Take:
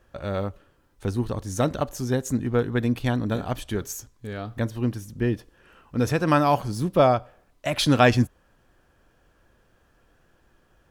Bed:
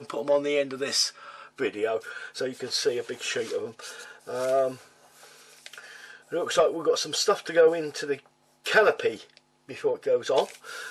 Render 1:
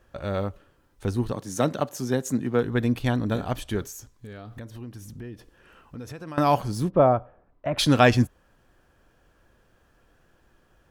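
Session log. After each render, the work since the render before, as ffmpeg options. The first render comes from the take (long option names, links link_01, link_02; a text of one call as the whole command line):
ffmpeg -i in.wav -filter_complex "[0:a]asettb=1/sr,asplit=3[link_01][link_02][link_03];[link_01]atrim=end=1.324[link_04];[link_02]atrim=start=1.32:end=2.64,asetpts=PTS-STARTPTS,afade=type=in:duration=0.004:curve=qsin,afade=type=out:start_time=1.316:duration=0.004:curve=qsin,highpass=frequency=130:width=0.5412,highpass=frequency=130:width=1.3066[link_05];[link_03]atrim=start=2.636[link_06];[link_04][link_05]acrossfade=duration=0.004:curve1=hsin:curve2=qsin[link_07];[link_07][link_06]acrossfade=duration=0.004:curve1=qsin:curve2=hsin,asettb=1/sr,asplit=3[link_08][link_09][link_10];[link_08]atrim=end=3.864[link_11];[link_09]atrim=start=3.86:end=6.38,asetpts=PTS-STARTPTS,afade=type=in:duration=0.004:curve=qsin,afade=type=out:start_time=2.516:duration=0.004:curve=qsin,acompressor=threshold=-37dB:ratio=4:attack=3.2:release=140:knee=1:detection=peak[link_12];[link_10]atrim=start=6.376[link_13];[link_11][link_12]acrossfade=duration=0.004:curve1=hsin:curve2=qsin[link_14];[link_14][link_13]acrossfade=duration=0.004:curve1=qsin:curve2=hsin,asplit=3[link_15][link_16][link_17];[link_15]afade=type=out:start_time=6.89:duration=0.02[link_18];[link_16]lowpass=1300,afade=type=in:start_time=6.89:duration=0.02,afade=type=out:start_time=7.77:duration=0.02[link_19];[link_17]afade=type=in:start_time=7.77:duration=0.02[link_20];[link_18][link_19][link_20]amix=inputs=3:normalize=0" out.wav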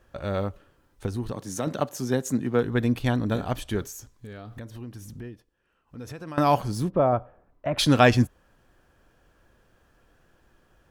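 ffmpeg -i in.wav -filter_complex "[0:a]asettb=1/sr,asplit=3[link_01][link_02][link_03];[link_01]atrim=end=1.064[link_04];[link_02]atrim=start=1.06:end=1.67,asetpts=PTS-STARTPTS,afade=type=in:duration=0.004:curve=qsin,afade=type=out:start_time=0.606:duration=0.004:curve=qsin,acompressor=threshold=-28dB:ratio=2:attack=3.2:release=140:knee=1:detection=peak[link_05];[link_03]atrim=start=1.666[link_06];[link_04][link_05]acrossfade=duration=0.004:curve1=hsin:curve2=qsin[link_07];[link_07][link_06]acrossfade=duration=0.004:curve1=qsin:curve2=hsin,asettb=1/sr,asplit=3[link_08][link_09][link_10];[link_08]atrim=end=6.654[link_11];[link_09]atrim=start=6.65:end=7.13,asetpts=PTS-STARTPTS,afade=type=in:duration=0.004:curve=qsin,afade=type=out:start_time=0.476:duration=0.004:curve=qsin,acompressor=threshold=-22dB:ratio=1.5:attack=3.2:release=140:knee=1:detection=peak[link_12];[link_10]atrim=start=7.126[link_13];[link_11][link_12]acrossfade=duration=0.004:curve1=hsin:curve2=qsin[link_14];[link_14][link_13]acrossfade=duration=0.004:curve1=qsin:curve2=hsin,asplit=3[link_15][link_16][link_17];[link_15]atrim=end=5.43,asetpts=PTS-STARTPTS,afade=type=out:start_time=5.27:duration=0.16:silence=0.133352[link_18];[link_16]atrim=start=5.43:end=5.86,asetpts=PTS-STARTPTS,volume=-17.5dB[link_19];[link_17]atrim=start=5.86,asetpts=PTS-STARTPTS,afade=type=in:duration=0.16:silence=0.133352[link_20];[link_18][link_19][link_20]concat=n=3:v=0:a=1" out.wav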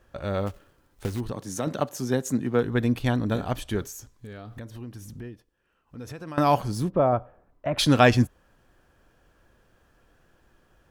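ffmpeg -i in.wav -filter_complex "[0:a]asplit=3[link_01][link_02][link_03];[link_01]afade=type=out:start_time=0.46:duration=0.02[link_04];[link_02]acrusher=bits=3:mode=log:mix=0:aa=0.000001,afade=type=in:start_time=0.46:duration=0.02,afade=type=out:start_time=1.19:duration=0.02[link_05];[link_03]afade=type=in:start_time=1.19:duration=0.02[link_06];[link_04][link_05][link_06]amix=inputs=3:normalize=0" out.wav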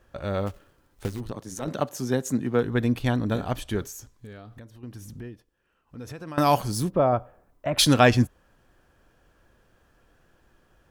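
ffmpeg -i in.wav -filter_complex "[0:a]asettb=1/sr,asplit=3[link_01][link_02][link_03];[link_01]atrim=end=1.084[link_04];[link_02]atrim=start=1.08:end=1.68,asetpts=PTS-STARTPTS,afade=type=in:duration=0.004:curve=qsin,afade=type=out:start_time=0.596:duration=0.004:curve=qsin,tremolo=f=110:d=0.71[link_05];[link_03]atrim=start=1.676[link_06];[link_04][link_05]acrossfade=duration=0.004:curve1=hsin:curve2=qsin[link_07];[link_07][link_06]acrossfade=duration=0.004:curve1=qsin:curve2=hsin,asettb=1/sr,asplit=3[link_08][link_09][link_10];[link_08]atrim=end=6.384[link_11];[link_09]atrim=start=6.38:end=7.94,asetpts=PTS-STARTPTS,afade=type=in:duration=0.004:curve=qsin,afade=type=out:start_time=1.556:duration=0.004:curve=qsin,highshelf=frequency=4400:gain=10[link_12];[link_10]atrim=start=7.936[link_13];[link_11][link_12]acrossfade=duration=0.004:curve1=hsin:curve2=qsin[link_14];[link_14][link_13]acrossfade=duration=0.004:curve1=qsin:curve2=hsin,asplit=2[link_15][link_16];[link_15]atrim=end=4.83,asetpts=PTS-STARTPTS,afade=type=out:start_time=4.11:duration=0.72:silence=0.316228[link_17];[link_16]atrim=start=4.83,asetpts=PTS-STARTPTS,afade=type=in:duration=0.004:curve=hsin:silence=0.316228[link_18];[link_17][link_18]concat=n=2:v=0:a=1" out.wav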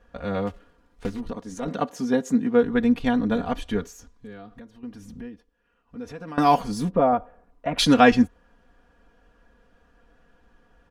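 ffmpeg -i in.wav -af "aemphasis=mode=reproduction:type=50fm,aecho=1:1:4.2:0.82" out.wav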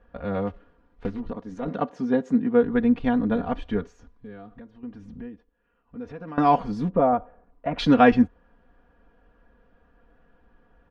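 ffmpeg -i in.wav -af "lowpass=4100,highshelf=frequency=2900:gain=-10.5" out.wav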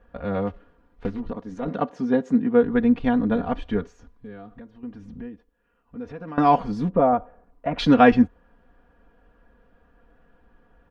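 ffmpeg -i in.wav -af "volume=1.5dB" out.wav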